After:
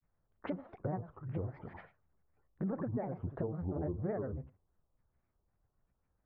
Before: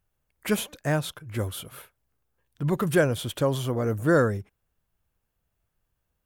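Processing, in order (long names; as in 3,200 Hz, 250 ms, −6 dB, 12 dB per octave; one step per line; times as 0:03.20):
downward compressor 16 to 1, threshold −32 dBFS, peak gain reduction 17 dB
low-pass filter 1,400 Hz 24 dB per octave
on a send: flutter between parallel walls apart 11.5 metres, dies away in 0.3 s
on the sum: treble cut that deepens with the level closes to 900 Hz, closed at −34.5 dBFS
granular cloud, spray 10 ms, pitch spread up and down by 7 semitones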